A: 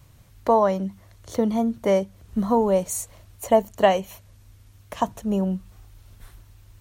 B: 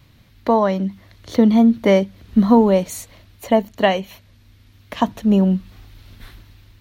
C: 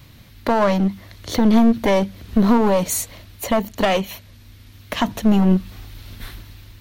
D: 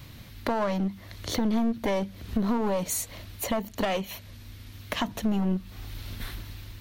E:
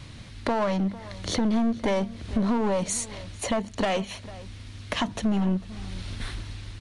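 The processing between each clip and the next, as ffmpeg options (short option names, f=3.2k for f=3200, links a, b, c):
-af "equalizer=f=250:t=o:w=1:g=9,equalizer=f=2k:t=o:w=1:g=6,equalizer=f=4k:t=o:w=1:g=9,equalizer=f=8k:t=o:w=1:g=-8,dynaudnorm=f=370:g=5:m=11.5dB,volume=-1dB"
-af "highshelf=f=6.4k:g=6,alimiter=limit=-10.5dB:level=0:latency=1:release=81,aeval=exprs='clip(val(0),-1,0.075)':c=same,volume=5.5dB"
-af "acompressor=threshold=-32dB:ratio=2"
-filter_complex "[0:a]asplit=2[a][b];[b]volume=27.5dB,asoftclip=hard,volume=-27.5dB,volume=-8.5dB[c];[a][c]amix=inputs=2:normalize=0,asplit=2[d][e];[e]adelay=449,volume=-18dB,highshelf=f=4k:g=-10.1[f];[d][f]amix=inputs=2:normalize=0,aresample=22050,aresample=44100"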